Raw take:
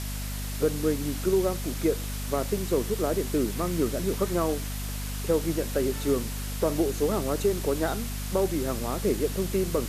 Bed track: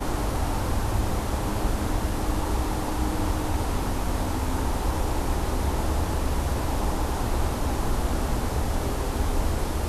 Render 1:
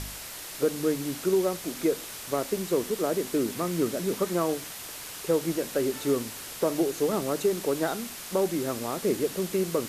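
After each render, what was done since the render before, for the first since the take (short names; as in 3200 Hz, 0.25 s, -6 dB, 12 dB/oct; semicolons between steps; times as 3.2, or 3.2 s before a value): de-hum 50 Hz, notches 5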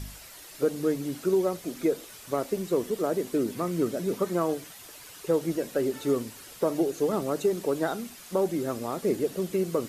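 denoiser 9 dB, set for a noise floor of -40 dBFS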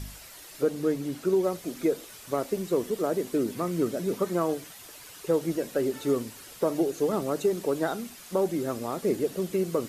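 0.62–1.44 high shelf 5200 Hz -4 dB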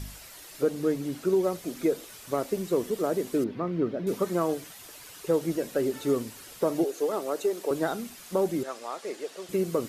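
3.44–4.07 air absorption 310 m; 6.84–7.71 Chebyshev high-pass 440 Hz; 8.63–9.49 BPF 670–7700 Hz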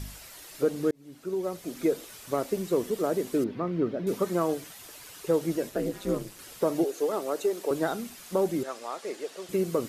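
0.91–1.88 fade in; 5.69–6.39 ring modulator 100 Hz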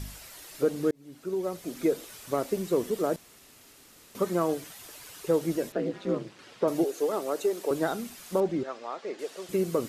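3.16–4.15 room tone; 5.72–6.68 BPF 120–3900 Hz; 8.4–9.19 air absorption 140 m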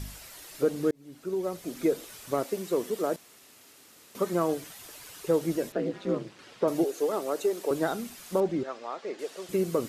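2.43–4.32 HPF 320 Hz -> 150 Hz 6 dB/oct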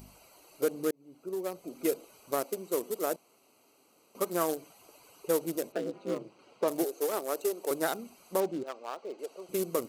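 Wiener smoothing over 25 samples; RIAA curve recording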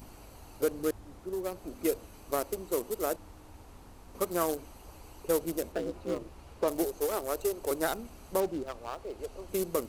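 add bed track -25.5 dB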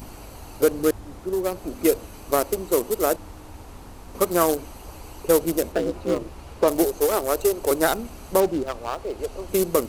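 gain +10 dB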